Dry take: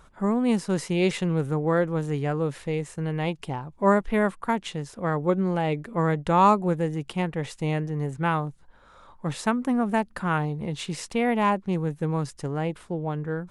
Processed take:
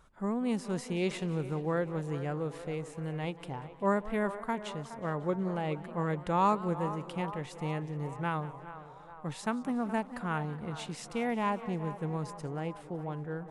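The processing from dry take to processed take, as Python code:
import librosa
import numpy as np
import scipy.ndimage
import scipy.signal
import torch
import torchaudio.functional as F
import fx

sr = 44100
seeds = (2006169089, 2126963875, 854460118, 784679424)

y = fx.echo_banded(x, sr, ms=420, feedback_pct=70, hz=800.0, wet_db=-11.5)
y = fx.echo_warbled(y, sr, ms=183, feedback_pct=62, rate_hz=2.8, cents=177, wet_db=-18)
y = F.gain(torch.from_numpy(y), -8.5).numpy()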